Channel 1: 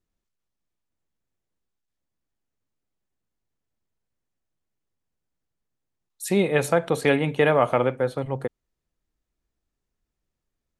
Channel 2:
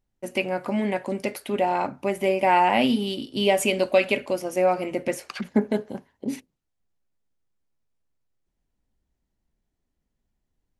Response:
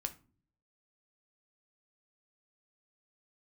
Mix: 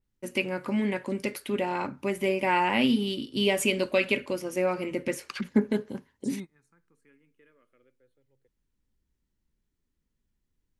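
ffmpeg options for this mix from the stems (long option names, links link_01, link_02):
-filter_complex "[0:a]asplit=2[link_01][link_02];[link_02]afreqshift=0.25[link_03];[link_01][link_03]amix=inputs=2:normalize=1,volume=-14.5dB[link_04];[1:a]adynamicequalizer=threshold=0.00794:dfrequency=4300:dqfactor=0.7:tfrequency=4300:tqfactor=0.7:attack=5:release=100:ratio=0.375:range=1.5:mode=cutabove:tftype=highshelf,volume=-1dB,asplit=2[link_05][link_06];[link_06]apad=whole_len=475901[link_07];[link_04][link_07]sidechaingate=range=-24dB:threshold=-41dB:ratio=16:detection=peak[link_08];[link_08][link_05]amix=inputs=2:normalize=0,equalizer=frequency=700:width=2.6:gain=-12.5"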